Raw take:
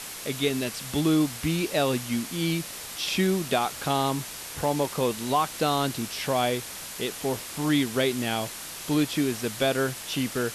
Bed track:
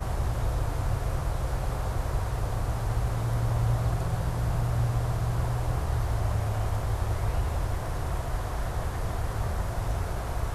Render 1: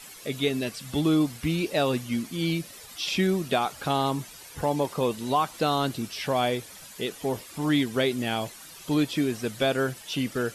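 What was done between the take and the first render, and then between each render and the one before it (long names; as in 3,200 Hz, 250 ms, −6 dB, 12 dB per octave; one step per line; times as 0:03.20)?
broadband denoise 12 dB, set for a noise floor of −39 dBFS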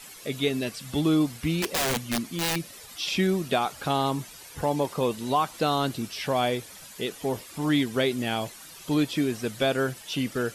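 0:01.62–0:02.56: wrap-around overflow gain 21 dB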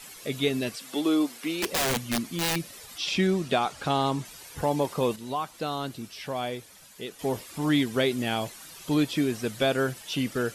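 0:00.76–0:01.63: high-pass filter 270 Hz 24 dB per octave
0:02.98–0:04.25: low-pass filter 8,800 Hz
0:05.16–0:07.19: clip gain −6.5 dB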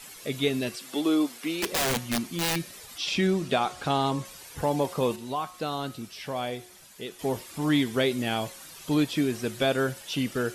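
hum removal 181.5 Hz, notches 38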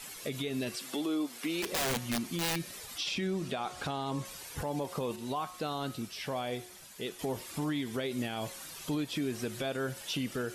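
downward compressor 5 to 1, threshold −29 dBFS, peak gain reduction 9.5 dB
brickwall limiter −25 dBFS, peak gain reduction 7 dB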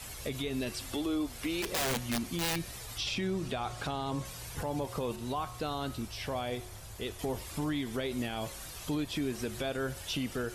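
mix in bed track −20.5 dB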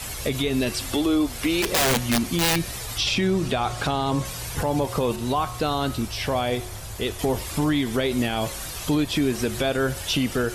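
level +11 dB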